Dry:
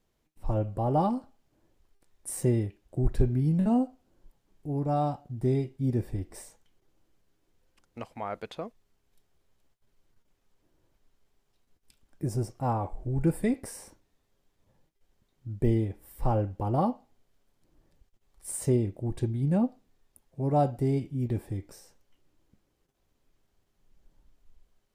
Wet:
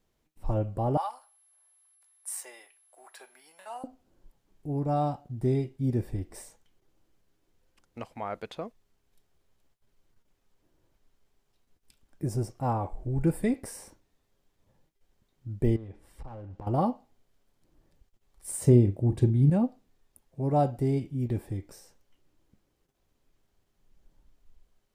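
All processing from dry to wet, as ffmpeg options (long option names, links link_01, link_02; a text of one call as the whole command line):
ffmpeg -i in.wav -filter_complex "[0:a]asettb=1/sr,asplit=3[link_01][link_02][link_03];[link_01]atrim=end=0.974[link_04];[link_02]atrim=start=0.97:end=3.84,asetpts=PTS-STARTPTS,afade=type=in:duration=0.004:curve=qsin,afade=type=out:start_time=2.866:duration=0.004:curve=qsin,highpass=frequency=830:width=0.5412,highpass=frequency=830:width=1.3066,aeval=exprs='val(0)+0.000794*sin(2*PI*11000*n/s)':channel_layout=same[link_05];[link_03]atrim=start=3.836[link_06];[link_04][link_05]acrossfade=duration=0.004:curve1=hsin:curve2=qsin[link_07];[link_07][link_06]acrossfade=duration=0.004:curve1=qsin:curve2=hsin,asettb=1/sr,asplit=3[link_08][link_09][link_10];[link_08]atrim=end=15.764[link_11];[link_09]atrim=start=15.76:end=16.67,asetpts=PTS-STARTPTS,afade=type=in:duration=0.004:curve=qsin,afade=type=out:start_time=0.906:duration=0.004:curve=qsin,lowpass=6400,acompressor=threshold=-36dB:ratio=16:attack=3.2:release=140:knee=1:detection=peak,aeval=exprs='clip(val(0),-1,0.01)':channel_layout=same[link_12];[link_10]atrim=start=16.666[link_13];[link_11][link_12]acrossfade=duration=0.004:curve1=hsin:curve2=qsin[link_14];[link_14][link_13]acrossfade=duration=0.004:curve1=qsin:curve2=hsin,asettb=1/sr,asplit=3[link_15][link_16][link_17];[link_15]atrim=end=18.624[link_18];[link_16]atrim=start=18.62:end=19.5,asetpts=PTS-STARTPTS,afade=type=in:duration=0.004:curve=qsin,afade=type=out:start_time=0.876:duration=0.004:curve=qsin,highpass=61,lowshelf=frequency=410:gain=8,asplit=2[link_19][link_20];[link_20]adelay=41,volume=-14dB[link_21];[link_19][link_21]amix=inputs=2:normalize=0,atrim=end_sample=38808[link_22];[link_17]atrim=start=19.496[link_23];[link_18][link_22]acrossfade=duration=0.004:curve1=hsin:curve2=qsin[link_24];[link_24][link_23]acrossfade=duration=0.004:curve1=qsin:curve2=hsin" out.wav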